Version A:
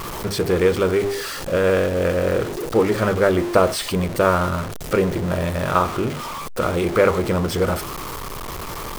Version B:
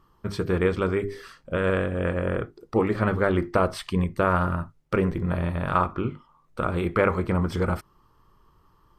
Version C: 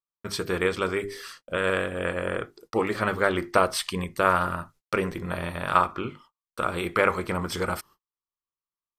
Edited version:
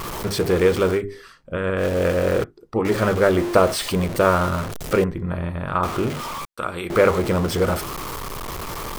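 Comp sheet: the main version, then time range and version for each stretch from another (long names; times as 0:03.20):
A
0:00.97–0:01.81: punch in from B, crossfade 0.10 s
0:02.44–0:02.85: punch in from B
0:05.04–0:05.83: punch in from B
0:06.45–0:06.90: punch in from C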